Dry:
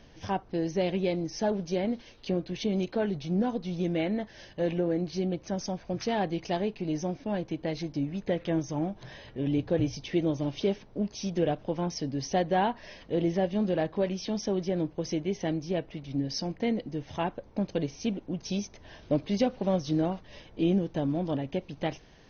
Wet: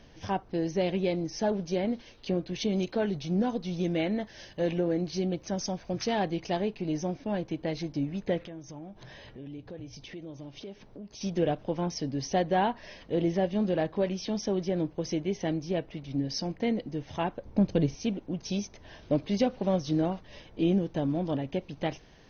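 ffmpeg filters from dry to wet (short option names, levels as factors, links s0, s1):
-filter_complex "[0:a]asettb=1/sr,asplit=3[s0][s1][s2];[s0]atrim=end=2.534[s3];[s1]atrim=start=2.53:end=6.3,asetpts=PTS-STARTPTS,afade=t=in:d=0.004:c=qsin,afade=t=out:st=3.766:d=0.004:c=qsin,highshelf=f=4700:g=6.5[s4];[s2]atrim=start=6.296[s5];[s3][s4]acrossfade=d=0.004:c1=hsin:c2=qsin[s6];[s6][s5]acrossfade=d=0.004:c1=qsin:c2=hsin,asettb=1/sr,asplit=3[s7][s8][s9];[s7]atrim=end=8.454[s10];[s8]atrim=start=8.45:end=11.21,asetpts=PTS-STARTPTS,afade=t=in:d=0.004:c=qsin,afade=t=out:st=2.756:d=0.004:c=qsin,acompressor=threshold=0.00631:ratio=3:attack=3.2:release=140:knee=1:detection=peak[s11];[s9]atrim=start=11.206[s12];[s10][s11]acrossfade=d=0.004:c1=hsin:c2=qsin[s13];[s13][s12]acrossfade=d=0.004:c1=qsin:c2=hsin,asettb=1/sr,asplit=3[s14][s15][s16];[s14]atrim=end=17.454[s17];[s15]atrim=start=17.45:end=17.95,asetpts=PTS-STARTPTS,afade=t=in:d=0.004:c=qsin,afade=t=out:st=0.496:d=0.004:c=qsin,lowshelf=f=260:g=10[s18];[s16]atrim=start=17.946[s19];[s17][s18]acrossfade=d=0.004:c1=hsin:c2=qsin[s20];[s20][s19]acrossfade=d=0.004:c1=qsin:c2=hsin"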